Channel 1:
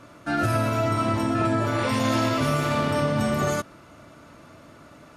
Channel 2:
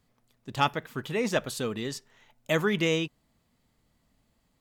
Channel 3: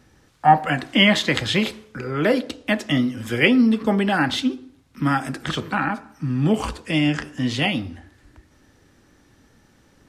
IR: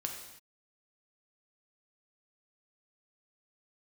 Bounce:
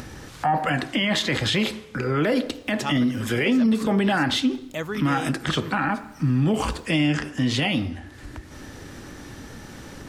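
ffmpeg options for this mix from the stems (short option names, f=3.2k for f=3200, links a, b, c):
-filter_complex "[1:a]acompressor=mode=upward:threshold=-31dB:ratio=2.5,adelay=2250,volume=-4.5dB[a];[2:a]alimiter=limit=-13dB:level=0:latency=1:release=12,acompressor=mode=upward:threshold=-31dB:ratio=2.5,volume=3dB,asplit=2[b][c];[c]volume=-19dB[d];[3:a]atrim=start_sample=2205[e];[d][e]afir=irnorm=-1:irlink=0[f];[a][b][f]amix=inputs=3:normalize=0,alimiter=limit=-13.5dB:level=0:latency=1:release=75"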